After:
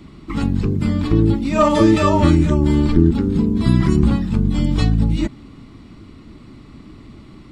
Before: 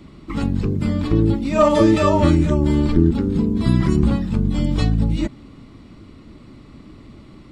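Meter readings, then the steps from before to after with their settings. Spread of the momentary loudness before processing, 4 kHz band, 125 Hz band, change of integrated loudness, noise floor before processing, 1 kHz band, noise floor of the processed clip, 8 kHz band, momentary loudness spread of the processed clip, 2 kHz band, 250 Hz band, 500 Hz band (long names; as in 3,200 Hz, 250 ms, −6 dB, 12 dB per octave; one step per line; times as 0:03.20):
7 LU, +2.0 dB, +2.0 dB, +1.5 dB, −44 dBFS, +1.5 dB, −42 dBFS, can't be measured, 6 LU, +2.0 dB, +2.0 dB, −0.5 dB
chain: parametric band 550 Hz −5 dB 0.46 octaves
level +2 dB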